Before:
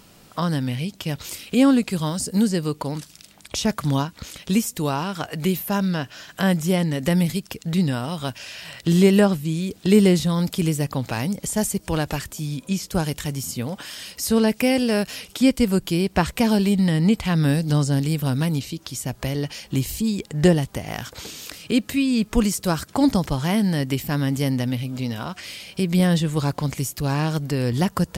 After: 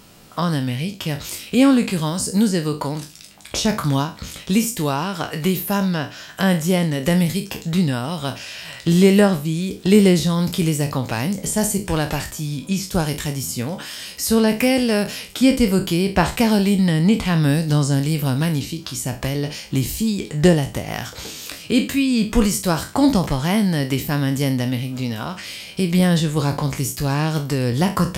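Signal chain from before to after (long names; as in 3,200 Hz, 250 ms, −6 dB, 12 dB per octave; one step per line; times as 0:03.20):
peak hold with a decay on every bin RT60 0.32 s
level +2 dB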